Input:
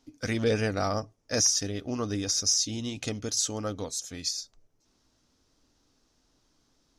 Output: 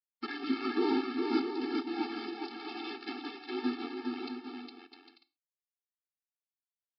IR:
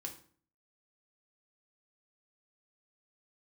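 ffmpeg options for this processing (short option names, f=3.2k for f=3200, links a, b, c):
-filter_complex "[0:a]aeval=exprs='val(0)+0.5*0.0266*sgn(val(0))':c=same,highshelf=f=2k:g=-10,aresample=11025,aeval=exprs='val(0)*gte(abs(val(0)),0.0316)':c=same,aresample=44100,highpass=f=400:t=q:w=4.9,afreqshift=-280,aecho=1:1:410|656|803.6|892.2|945.3:0.631|0.398|0.251|0.158|0.1,asplit=2[a][b];[1:a]atrim=start_sample=2205,atrim=end_sample=6174,lowshelf=f=420:g=-6.5[c];[b][c]afir=irnorm=-1:irlink=0,volume=0dB[d];[a][d]amix=inputs=2:normalize=0,afftfilt=real='re*eq(mod(floor(b*sr/1024/230),2),1)':imag='im*eq(mod(floor(b*sr/1024/230),2),1)':win_size=1024:overlap=0.75,volume=-4dB"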